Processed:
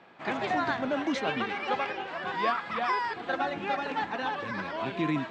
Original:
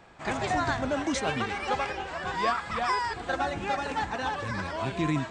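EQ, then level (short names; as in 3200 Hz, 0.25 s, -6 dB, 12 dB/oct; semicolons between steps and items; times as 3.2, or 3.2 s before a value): Chebyshev band-pass 210–3400 Hz, order 2; 0.0 dB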